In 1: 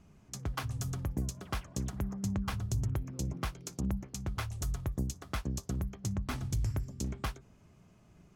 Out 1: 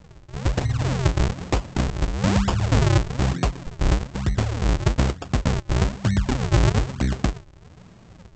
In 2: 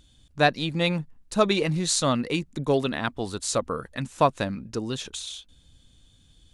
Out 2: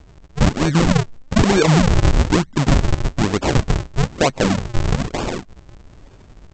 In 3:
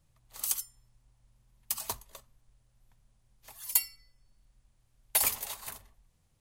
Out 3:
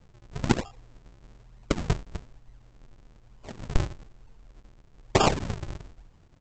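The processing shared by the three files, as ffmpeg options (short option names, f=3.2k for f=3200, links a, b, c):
-af "acontrast=74,aresample=16000,acrusher=samples=39:mix=1:aa=0.000001:lfo=1:lforange=62.4:lforate=1.1,aresample=44100,alimiter=level_in=12.5dB:limit=-1dB:release=50:level=0:latency=1,volume=-5.5dB"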